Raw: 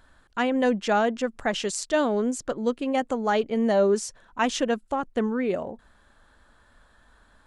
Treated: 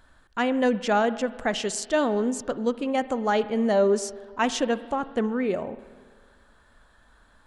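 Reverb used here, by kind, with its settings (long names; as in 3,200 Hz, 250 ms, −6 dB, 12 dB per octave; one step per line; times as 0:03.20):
spring reverb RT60 1.7 s, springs 47/58 ms, chirp 25 ms, DRR 14.5 dB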